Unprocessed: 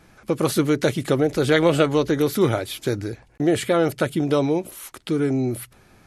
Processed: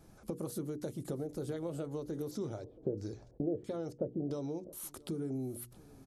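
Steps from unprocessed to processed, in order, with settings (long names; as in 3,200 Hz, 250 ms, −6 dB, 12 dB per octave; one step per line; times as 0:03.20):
dynamic equaliser 3,100 Hz, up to −4 dB, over −40 dBFS, Q 0.83
downward compressor 6 to 1, threshold −31 dBFS, peak gain reduction 16.5 dB
single-tap delay 675 ms −23 dB
0:02.31–0:04.73: auto-filter low-pass square 1.5 Hz 530–5,800 Hz
parametric band 2,100 Hz −14.5 dB 2 octaves
mains-hum notches 60/120/180/240/300/360/420/480 Hz
level −3.5 dB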